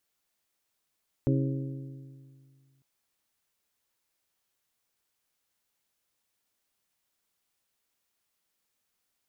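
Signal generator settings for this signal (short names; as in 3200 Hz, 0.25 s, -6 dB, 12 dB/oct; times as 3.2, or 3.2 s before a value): metal hit bell, lowest mode 135 Hz, modes 5, decay 2.13 s, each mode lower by 3 dB, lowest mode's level -23 dB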